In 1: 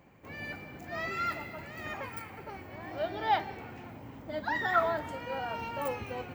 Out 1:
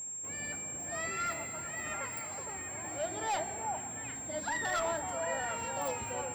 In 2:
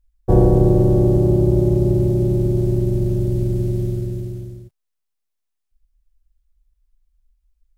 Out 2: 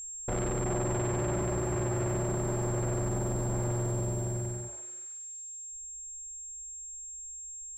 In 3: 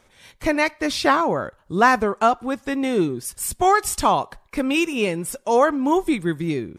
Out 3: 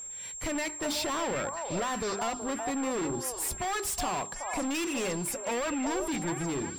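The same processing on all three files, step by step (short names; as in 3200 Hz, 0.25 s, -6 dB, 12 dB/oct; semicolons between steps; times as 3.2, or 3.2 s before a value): notches 50/100/150/200/250/300/350/400 Hz; limiter -12.5 dBFS; hard clip -27.5 dBFS; whine 7500 Hz -36 dBFS; delay with a stepping band-pass 0.373 s, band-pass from 740 Hz, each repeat 1.4 oct, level -2.5 dB; gain -2.5 dB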